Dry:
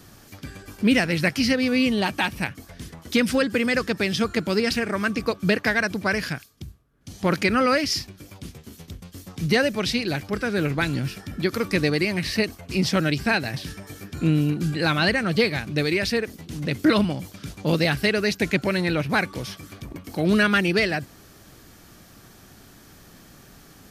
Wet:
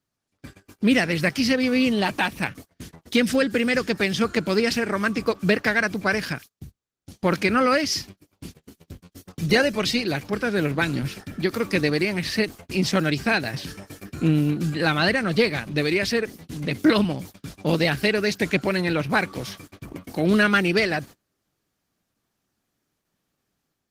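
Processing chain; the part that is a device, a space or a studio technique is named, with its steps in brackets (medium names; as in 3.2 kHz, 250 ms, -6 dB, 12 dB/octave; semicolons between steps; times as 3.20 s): 3.05–3.93 s: dynamic bell 1 kHz, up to -5 dB, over -41 dBFS, Q 2; video call (high-pass 120 Hz 6 dB/octave; level rider gain up to 6 dB; gate -35 dBFS, range -28 dB; trim -3.5 dB; Opus 16 kbps 48 kHz)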